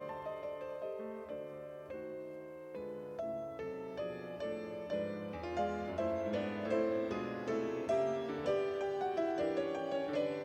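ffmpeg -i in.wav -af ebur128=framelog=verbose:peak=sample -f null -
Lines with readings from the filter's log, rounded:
Integrated loudness:
  I:         -38.7 LUFS
  Threshold: -48.7 LUFS
Loudness range:
  LRA:         8.2 LU
  Threshold: -58.7 LUFS
  LRA low:   -44.3 LUFS
  LRA high:  -36.1 LUFS
Sample peak:
  Peak:      -22.2 dBFS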